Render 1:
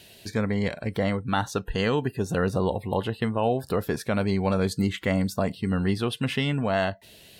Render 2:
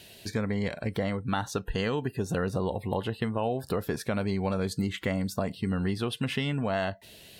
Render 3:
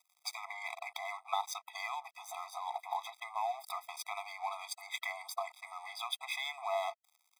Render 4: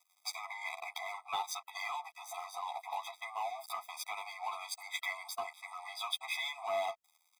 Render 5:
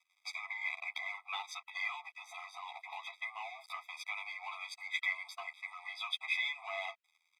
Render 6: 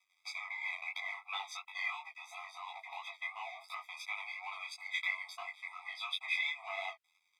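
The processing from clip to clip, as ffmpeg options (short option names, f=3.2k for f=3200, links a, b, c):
-af "acompressor=threshold=-26dB:ratio=3"
-af "aeval=exprs='sgn(val(0))*max(abs(val(0))-0.00708,0)':c=same,acompressor=threshold=-31dB:ratio=10,afftfilt=real='re*eq(mod(floor(b*sr/1024/650),2),1)':imag='im*eq(mod(floor(b*sr/1024/650),2),1)':win_size=1024:overlap=0.75,volume=7dB"
-filter_complex "[0:a]acrossover=split=1300[a][b];[a]asoftclip=type=tanh:threshold=-33.5dB[c];[c][b]amix=inputs=2:normalize=0,asplit=2[d][e];[e]adelay=11.4,afreqshift=-0.3[f];[d][f]amix=inputs=2:normalize=1,volume=4dB"
-af "bandpass=f=2.3k:t=q:w=1.8:csg=0,volume=5dB"
-af "flanger=delay=20:depth=3.3:speed=2.9,volume=3dB"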